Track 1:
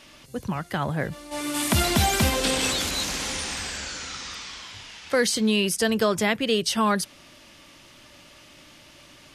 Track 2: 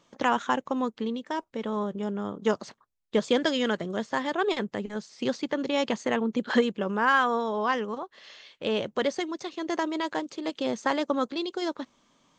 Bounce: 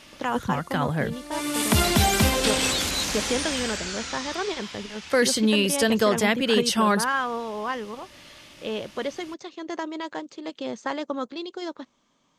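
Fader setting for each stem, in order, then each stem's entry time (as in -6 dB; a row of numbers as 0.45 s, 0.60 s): +1.0 dB, -3.0 dB; 0.00 s, 0.00 s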